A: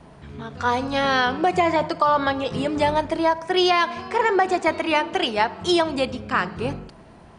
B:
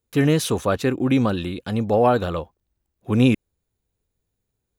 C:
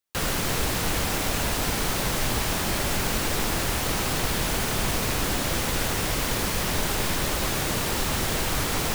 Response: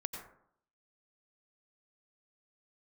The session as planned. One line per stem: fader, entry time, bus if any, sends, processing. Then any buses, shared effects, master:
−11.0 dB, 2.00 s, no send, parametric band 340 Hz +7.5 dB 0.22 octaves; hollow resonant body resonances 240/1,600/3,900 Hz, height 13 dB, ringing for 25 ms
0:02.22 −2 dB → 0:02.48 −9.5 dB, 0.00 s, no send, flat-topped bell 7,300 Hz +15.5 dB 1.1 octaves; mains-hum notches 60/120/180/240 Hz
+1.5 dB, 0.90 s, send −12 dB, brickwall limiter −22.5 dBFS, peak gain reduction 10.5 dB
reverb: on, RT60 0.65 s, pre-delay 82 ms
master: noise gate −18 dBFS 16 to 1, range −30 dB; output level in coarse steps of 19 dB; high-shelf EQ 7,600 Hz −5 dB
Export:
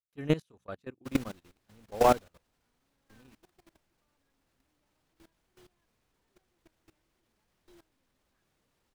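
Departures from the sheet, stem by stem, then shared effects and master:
stem A −11.0 dB → −20.5 dB
stem B: missing flat-topped bell 7,300 Hz +15.5 dB 1.1 octaves
stem C: send −12 dB → −23 dB

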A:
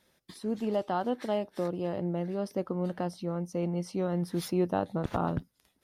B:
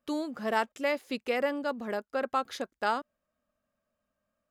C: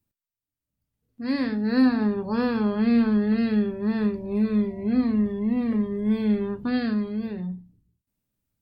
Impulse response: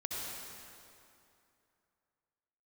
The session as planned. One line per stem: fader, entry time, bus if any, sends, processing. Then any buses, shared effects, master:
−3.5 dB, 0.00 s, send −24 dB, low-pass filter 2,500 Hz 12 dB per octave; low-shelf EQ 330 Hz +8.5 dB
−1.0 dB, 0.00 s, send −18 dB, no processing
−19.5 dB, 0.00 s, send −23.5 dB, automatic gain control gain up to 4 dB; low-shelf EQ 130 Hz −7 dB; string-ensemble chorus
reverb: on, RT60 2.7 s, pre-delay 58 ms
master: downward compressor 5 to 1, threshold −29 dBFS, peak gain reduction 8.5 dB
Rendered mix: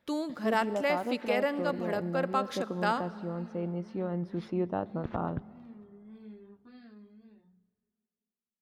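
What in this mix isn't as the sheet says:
stem A: missing low-shelf EQ 330 Hz +8.5 dB
stem C −19.5 dB → −28.0 dB
master: missing downward compressor 5 to 1, threshold −29 dBFS, peak gain reduction 8.5 dB

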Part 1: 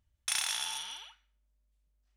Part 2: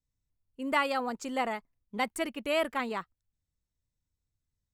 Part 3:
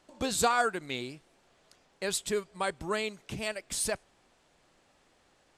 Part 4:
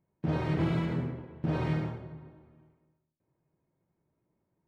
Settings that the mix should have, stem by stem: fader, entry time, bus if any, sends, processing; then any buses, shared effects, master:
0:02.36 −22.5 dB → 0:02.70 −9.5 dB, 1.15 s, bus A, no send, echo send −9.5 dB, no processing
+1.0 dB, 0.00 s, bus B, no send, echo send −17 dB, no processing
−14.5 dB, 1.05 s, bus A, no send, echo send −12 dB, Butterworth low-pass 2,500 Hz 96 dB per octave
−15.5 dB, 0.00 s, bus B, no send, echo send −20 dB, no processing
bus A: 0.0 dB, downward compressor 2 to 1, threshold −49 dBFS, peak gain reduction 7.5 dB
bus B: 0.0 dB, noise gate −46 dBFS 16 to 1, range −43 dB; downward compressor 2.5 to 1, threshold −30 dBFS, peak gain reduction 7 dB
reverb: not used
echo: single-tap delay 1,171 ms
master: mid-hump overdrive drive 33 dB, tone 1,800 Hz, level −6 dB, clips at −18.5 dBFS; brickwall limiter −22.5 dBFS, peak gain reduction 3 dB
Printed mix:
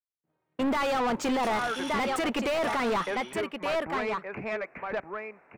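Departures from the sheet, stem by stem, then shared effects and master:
stem 1 −22.5 dB → −16.5 dB
stem 4 −15.5 dB → −24.5 dB

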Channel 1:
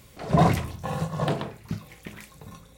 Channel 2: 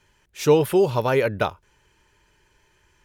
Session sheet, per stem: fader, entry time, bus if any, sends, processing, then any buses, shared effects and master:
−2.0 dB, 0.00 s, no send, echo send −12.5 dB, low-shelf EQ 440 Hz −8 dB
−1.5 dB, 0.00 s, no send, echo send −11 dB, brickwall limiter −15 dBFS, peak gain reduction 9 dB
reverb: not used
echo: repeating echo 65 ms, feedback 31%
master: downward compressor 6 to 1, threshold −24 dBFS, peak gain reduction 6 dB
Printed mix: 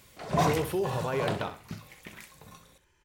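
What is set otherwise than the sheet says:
stem 2 −1.5 dB → −7.5 dB
master: missing downward compressor 6 to 1, threshold −24 dBFS, peak gain reduction 6 dB

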